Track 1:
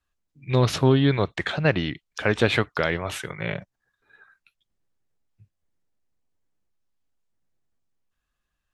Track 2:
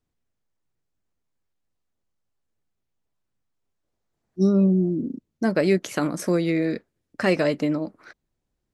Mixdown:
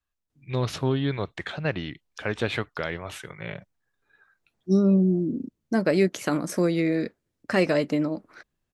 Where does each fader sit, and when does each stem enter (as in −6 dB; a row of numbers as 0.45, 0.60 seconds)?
−6.5, −1.0 decibels; 0.00, 0.30 seconds